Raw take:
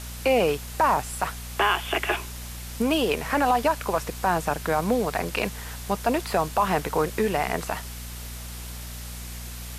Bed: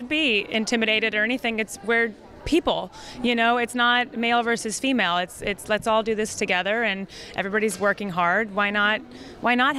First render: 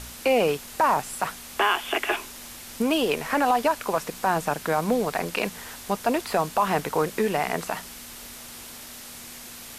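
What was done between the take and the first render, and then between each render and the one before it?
hum removal 60 Hz, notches 3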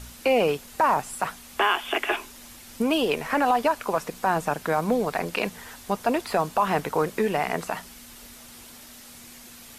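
broadband denoise 6 dB, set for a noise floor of −42 dBFS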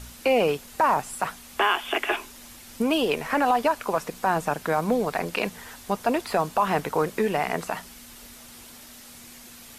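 no processing that can be heard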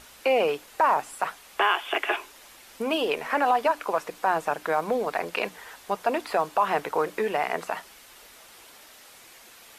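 bass and treble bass −14 dB, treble −6 dB
mains-hum notches 60/120/180/240/300 Hz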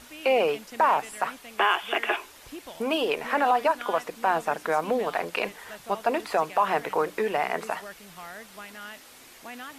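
mix in bed −21 dB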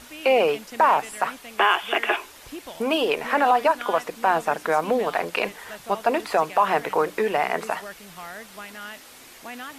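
level +3.5 dB

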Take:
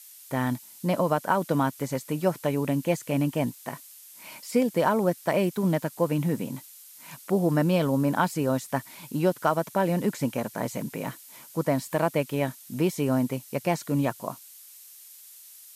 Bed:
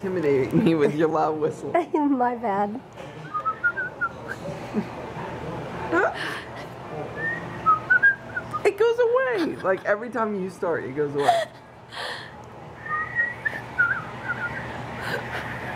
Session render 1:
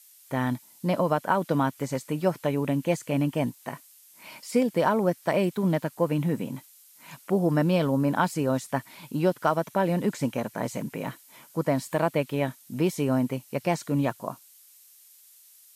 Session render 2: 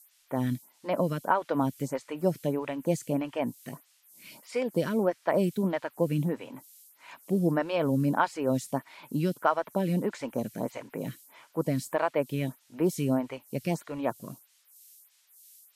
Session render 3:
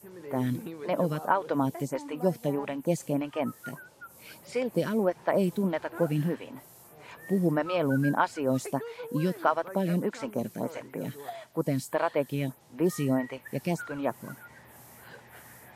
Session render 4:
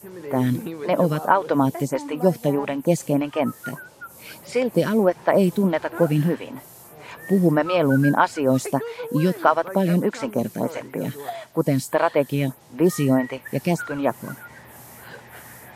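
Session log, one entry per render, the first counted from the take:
noise reduction from a noise print 6 dB
phaser with staggered stages 1.6 Hz
mix in bed −20.5 dB
level +8 dB; brickwall limiter −3 dBFS, peak gain reduction 1 dB

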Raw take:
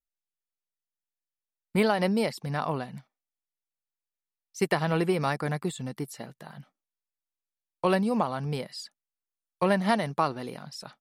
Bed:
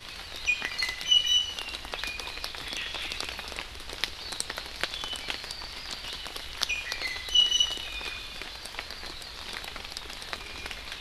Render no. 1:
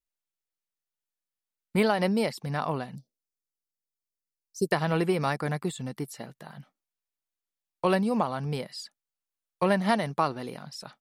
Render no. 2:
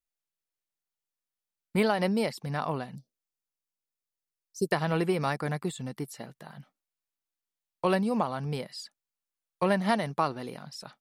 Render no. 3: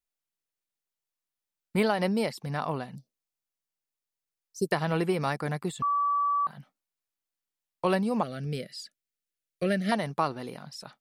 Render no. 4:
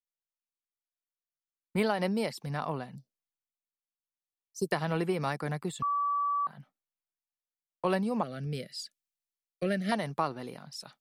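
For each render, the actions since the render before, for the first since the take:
0:02.95–0:04.72: Chebyshev band-stop filter 490–4,700 Hz, order 3
level −1.5 dB
0:05.82–0:06.47: beep over 1,150 Hz −23 dBFS; 0:08.23–0:09.92: Butterworth band-reject 940 Hz, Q 1.1
downward compressor 1.5 to 1, threshold −32 dBFS, peak gain reduction 4.5 dB; multiband upward and downward expander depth 40%

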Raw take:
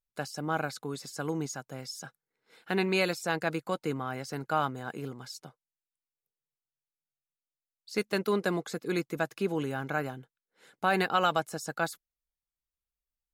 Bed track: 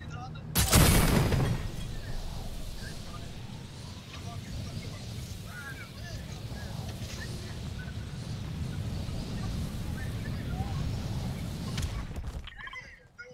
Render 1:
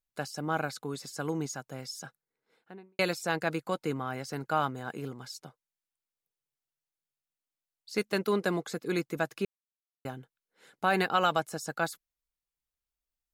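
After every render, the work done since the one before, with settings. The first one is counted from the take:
0:01.99–0:02.99: fade out and dull
0:09.45–0:10.05: silence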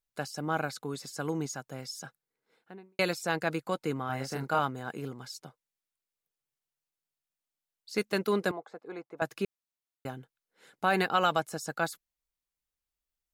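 0:04.06–0:04.59: double-tracking delay 30 ms −2 dB
0:08.51–0:09.22: resonant band-pass 770 Hz, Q 2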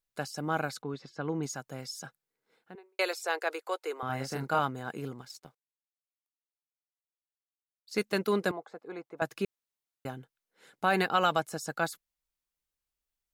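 0:00.82–0:01.43: high-frequency loss of the air 230 metres
0:02.75–0:04.03: elliptic high-pass filter 390 Hz, stop band 80 dB
0:05.21–0:07.92: mu-law and A-law mismatch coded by A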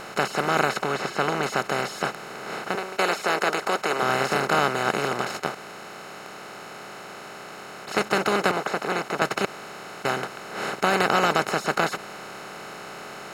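compressor on every frequency bin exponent 0.2
expander for the loud parts 1.5 to 1, over −30 dBFS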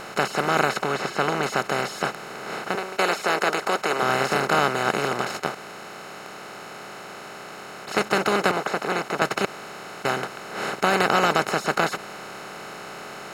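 level +1 dB

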